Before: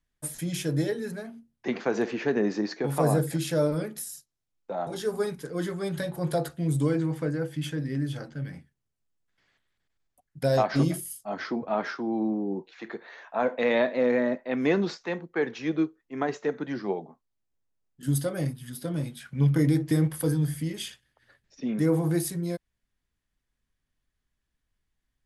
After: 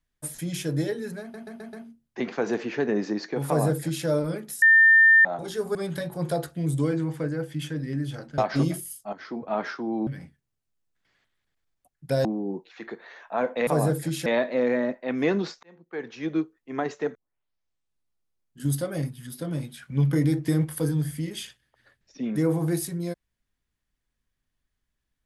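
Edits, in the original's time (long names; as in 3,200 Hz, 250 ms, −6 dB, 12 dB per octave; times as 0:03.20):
0:01.21: stutter 0.13 s, 5 plays
0:02.95–0:03.54: duplicate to 0:13.69
0:04.10–0:04.73: beep over 1,800 Hz −12 dBFS
0:05.23–0:05.77: remove
0:08.40–0:10.58: move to 0:12.27
0:11.33–0:11.73: fade in, from −12.5 dB
0:15.06–0:15.83: fade in
0:16.58: tape start 1.47 s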